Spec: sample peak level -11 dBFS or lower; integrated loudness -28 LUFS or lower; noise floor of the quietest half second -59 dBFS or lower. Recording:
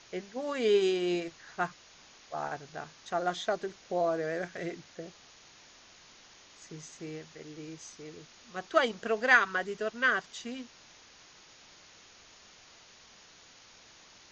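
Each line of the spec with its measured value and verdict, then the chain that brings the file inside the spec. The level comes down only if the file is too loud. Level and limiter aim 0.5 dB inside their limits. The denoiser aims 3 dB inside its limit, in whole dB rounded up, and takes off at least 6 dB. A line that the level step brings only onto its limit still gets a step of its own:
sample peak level -10.5 dBFS: fail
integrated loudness -31.0 LUFS: OK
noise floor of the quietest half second -56 dBFS: fail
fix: denoiser 6 dB, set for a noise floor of -56 dBFS; limiter -11.5 dBFS

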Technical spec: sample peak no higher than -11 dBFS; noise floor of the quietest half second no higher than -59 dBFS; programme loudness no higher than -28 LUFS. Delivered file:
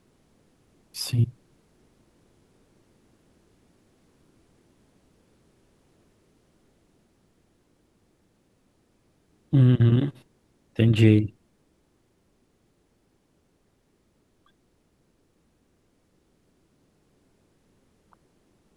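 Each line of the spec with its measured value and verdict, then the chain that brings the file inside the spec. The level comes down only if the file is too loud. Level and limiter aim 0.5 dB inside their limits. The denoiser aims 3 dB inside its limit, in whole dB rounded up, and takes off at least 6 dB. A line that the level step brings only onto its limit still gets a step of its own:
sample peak -4.5 dBFS: fail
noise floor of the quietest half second -67 dBFS: OK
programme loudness -22.0 LUFS: fail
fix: gain -6.5 dB; limiter -11.5 dBFS

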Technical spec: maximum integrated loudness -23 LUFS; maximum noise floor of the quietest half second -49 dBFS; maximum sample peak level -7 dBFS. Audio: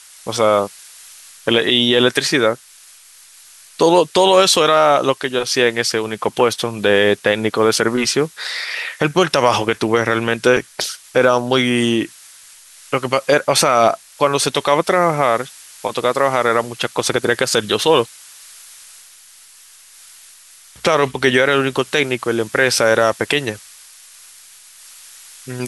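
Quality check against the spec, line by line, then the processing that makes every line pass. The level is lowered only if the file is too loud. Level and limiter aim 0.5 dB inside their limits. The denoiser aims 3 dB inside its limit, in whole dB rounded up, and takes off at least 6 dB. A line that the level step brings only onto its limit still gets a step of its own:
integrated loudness -16.0 LUFS: fail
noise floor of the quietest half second -45 dBFS: fail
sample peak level -1.5 dBFS: fail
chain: gain -7.5 dB

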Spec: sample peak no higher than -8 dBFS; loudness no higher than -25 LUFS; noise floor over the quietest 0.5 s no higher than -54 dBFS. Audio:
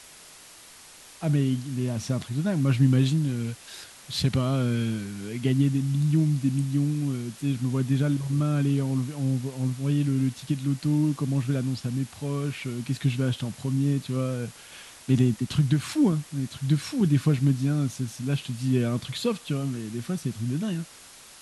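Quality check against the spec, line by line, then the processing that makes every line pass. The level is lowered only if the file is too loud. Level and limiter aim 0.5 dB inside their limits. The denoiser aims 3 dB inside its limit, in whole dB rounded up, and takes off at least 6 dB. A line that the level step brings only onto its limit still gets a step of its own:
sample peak -9.5 dBFS: OK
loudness -26.5 LUFS: OK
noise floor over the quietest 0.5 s -49 dBFS: fail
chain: denoiser 8 dB, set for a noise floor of -49 dBFS

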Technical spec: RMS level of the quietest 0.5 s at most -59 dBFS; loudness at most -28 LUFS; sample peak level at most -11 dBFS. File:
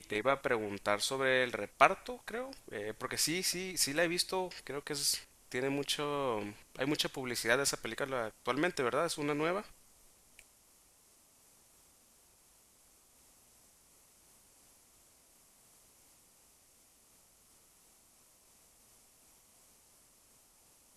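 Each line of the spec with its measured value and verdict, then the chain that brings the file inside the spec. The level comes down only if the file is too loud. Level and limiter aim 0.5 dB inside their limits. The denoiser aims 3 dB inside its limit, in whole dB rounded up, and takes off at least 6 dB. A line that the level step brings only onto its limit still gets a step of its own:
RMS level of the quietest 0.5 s -65 dBFS: OK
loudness -34.0 LUFS: OK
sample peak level -7.0 dBFS: fail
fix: limiter -11.5 dBFS

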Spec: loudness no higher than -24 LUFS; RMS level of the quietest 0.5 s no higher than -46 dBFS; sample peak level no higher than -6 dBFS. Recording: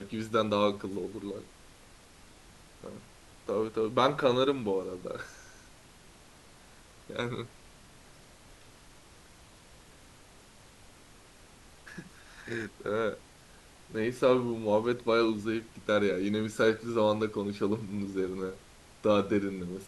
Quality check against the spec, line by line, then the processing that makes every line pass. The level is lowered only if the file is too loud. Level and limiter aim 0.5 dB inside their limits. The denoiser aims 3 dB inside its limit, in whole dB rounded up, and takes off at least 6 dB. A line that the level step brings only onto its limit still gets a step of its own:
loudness -30.5 LUFS: OK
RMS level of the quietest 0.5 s -55 dBFS: OK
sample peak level -11.0 dBFS: OK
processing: none

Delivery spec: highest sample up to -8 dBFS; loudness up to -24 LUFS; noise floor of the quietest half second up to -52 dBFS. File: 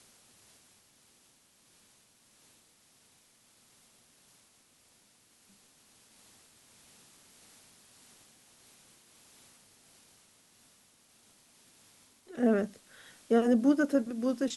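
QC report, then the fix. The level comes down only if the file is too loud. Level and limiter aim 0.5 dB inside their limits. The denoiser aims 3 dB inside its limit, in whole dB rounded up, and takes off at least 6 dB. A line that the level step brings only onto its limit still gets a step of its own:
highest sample -14.0 dBFS: OK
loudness -28.5 LUFS: OK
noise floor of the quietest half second -65 dBFS: OK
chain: none

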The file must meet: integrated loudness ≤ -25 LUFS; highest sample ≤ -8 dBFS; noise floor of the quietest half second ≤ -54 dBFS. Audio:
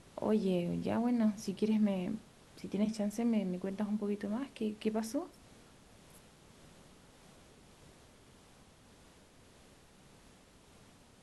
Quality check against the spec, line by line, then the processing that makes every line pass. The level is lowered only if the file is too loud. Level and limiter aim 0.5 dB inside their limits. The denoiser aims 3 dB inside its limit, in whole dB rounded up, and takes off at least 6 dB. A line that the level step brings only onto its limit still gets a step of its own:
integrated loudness -35.0 LUFS: OK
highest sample -20.5 dBFS: OK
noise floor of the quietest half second -61 dBFS: OK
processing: none

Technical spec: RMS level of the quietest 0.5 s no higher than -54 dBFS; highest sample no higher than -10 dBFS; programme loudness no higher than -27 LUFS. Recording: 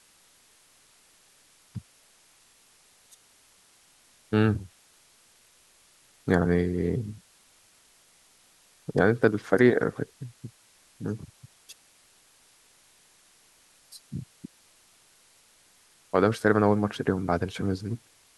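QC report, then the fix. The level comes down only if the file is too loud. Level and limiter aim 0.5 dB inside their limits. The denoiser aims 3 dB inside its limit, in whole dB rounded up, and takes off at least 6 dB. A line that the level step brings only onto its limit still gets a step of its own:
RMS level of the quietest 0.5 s -60 dBFS: OK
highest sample -6.0 dBFS: fail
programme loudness -26.5 LUFS: fail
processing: gain -1 dB; limiter -10.5 dBFS

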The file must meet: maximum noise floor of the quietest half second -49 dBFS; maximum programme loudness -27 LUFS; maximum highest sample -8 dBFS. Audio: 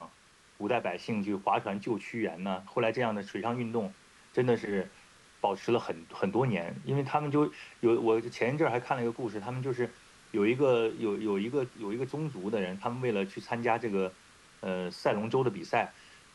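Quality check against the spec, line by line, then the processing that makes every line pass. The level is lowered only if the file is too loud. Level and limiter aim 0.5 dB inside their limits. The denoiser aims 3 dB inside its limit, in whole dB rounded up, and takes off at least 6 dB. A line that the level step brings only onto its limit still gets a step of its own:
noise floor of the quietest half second -60 dBFS: OK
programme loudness -31.5 LUFS: OK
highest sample -13.5 dBFS: OK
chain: none

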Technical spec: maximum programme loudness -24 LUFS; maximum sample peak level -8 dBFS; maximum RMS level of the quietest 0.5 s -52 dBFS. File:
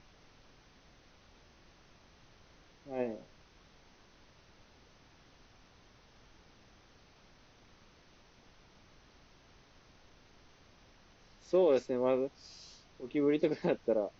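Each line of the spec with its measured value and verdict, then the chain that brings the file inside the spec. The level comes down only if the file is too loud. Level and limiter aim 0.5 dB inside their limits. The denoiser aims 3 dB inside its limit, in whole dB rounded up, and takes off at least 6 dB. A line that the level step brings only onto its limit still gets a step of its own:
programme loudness -32.5 LUFS: OK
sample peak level -18.0 dBFS: OK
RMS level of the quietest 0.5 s -62 dBFS: OK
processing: none

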